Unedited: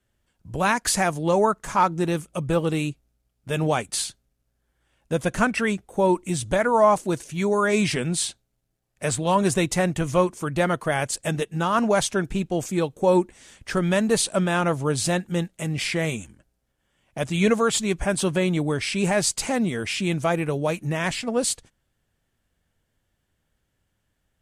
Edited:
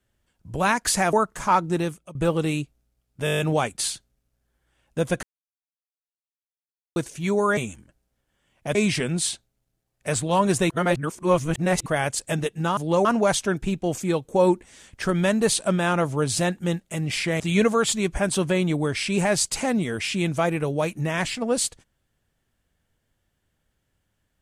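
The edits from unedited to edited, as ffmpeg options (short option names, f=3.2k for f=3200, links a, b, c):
-filter_complex "[0:a]asplit=19[a][b][c][d][e][f][g][h][i][j][k][l][m][n][o][p][q][r][s];[a]atrim=end=1.132[t];[b]atrim=start=1.408:end=2.43,asetpts=PTS-STARTPTS,afade=t=out:st=0.652:d=0.37:silence=0.0891251[u];[c]atrim=start=2.43:end=3.552,asetpts=PTS-STARTPTS,afade=t=in:d=0.004:c=hsin:silence=0.0891251[v];[d]atrim=start=3.528:end=3.552[w];[e]atrim=start=3.528:end=3.552[x];[f]atrim=start=3.528:end=3.552[y];[g]atrim=start=3.528:end=3.552[z];[h]atrim=start=3.528:end=3.552[aa];[i]atrim=start=3.528:end=3.552[ab];[j]atrim=start=3.528:end=5.37,asetpts=PTS-STARTPTS,afade=t=out:st=1.838:d=0.004:c=hsin[ac];[k]atrim=start=5.37:end=7.1,asetpts=PTS-STARTPTS,volume=0[ad];[l]atrim=start=7.1:end=7.712,asetpts=PTS-STARTPTS,afade=t=in:d=0.004:c=hsin[ae];[m]atrim=start=16.078:end=17.262[af];[n]atrim=start=7.708:end=9.662[ag];[o]atrim=start=9.658:end=10.822,asetpts=PTS-STARTPTS,areverse[ah];[p]atrim=start=10.818:end=11.732[ai];[q]atrim=start=1.128:end=1.412[aj];[r]atrim=start=11.728:end=16.082[ak];[s]atrim=start=17.258[al];[u][v]concat=n=2:v=0:a=1[am];[t][am]acrossfade=d=0.004:c1=hsin:c2=hsin[an];[an][w]acrossfade=d=0.004:c1=hsin:c2=hsin[ao];[ao][x]acrossfade=d=0.004:c1=hsin:c2=hsin[ap];[ap][y]acrossfade=d=0.004:c1=hsin:c2=hsin[aq];[aq][z]acrossfade=d=0.004:c1=hsin:c2=hsin[ar];[ar][aa]acrossfade=d=0.004:c1=hsin:c2=hsin[as];[as][ab]acrossfade=d=0.004:c1=hsin:c2=hsin[at];[ac][ad][ae]concat=n=3:v=0:a=1[au];[at][au]acrossfade=d=0.004:c1=hsin:c2=hsin[av];[av][af]acrossfade=d=0.004:c1=hsin:c2=hsin[aw];[aw][ag]acrossfade=d=0.004:c1=hsin:c2=hsin[ax];[ax][ah]acrossfade=d=0.004:c1=hsin:c2=hsin[ay];[ay][ai]acrossfade=d=0.004:c1=hsin:c2=hsin[az];[az][aj]acrossfade=d=0.004:c1=hsin:c2=hsin[ba];[ba][ak]acrossfade=d=0.004:c1=hsin:c2=hsin[bb];[bb][al]acrossfade=d=0.004:c1=hsin:c2=hsin"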